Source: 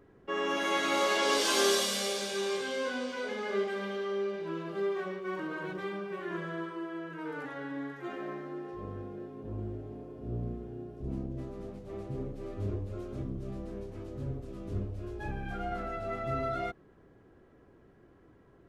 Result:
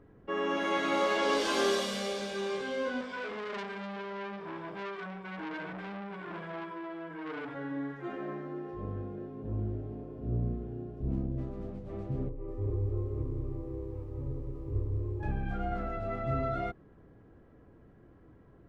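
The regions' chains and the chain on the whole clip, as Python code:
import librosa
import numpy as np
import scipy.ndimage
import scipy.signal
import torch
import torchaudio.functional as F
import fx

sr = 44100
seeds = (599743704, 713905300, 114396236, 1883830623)

y = fx.chain(x, sr, fx.ripple_eq(per_octave=1.7, db=12),
    fx.transformer_sat(knee_hz=3200.0), at=(3.01, 7.55))
y = fx.chain(y, sr, fx.lowpass(hz=1300.0, slope=12),
    fx.fixed_phaser(hz=1000.0, stages=8),
    fx.echo_crushed(ms=191, feedback_pct=55, bits=11, wet_db=-4.5), at=(12.29, 15.23))
y = fx.lowpass(y, sr, hz=2400.0, slope=6)
y = fx.low_shelf(y, sr, hz=230.0, db=6.0)
y = fx.notch(y, sr, hz=380.0, q=12.0)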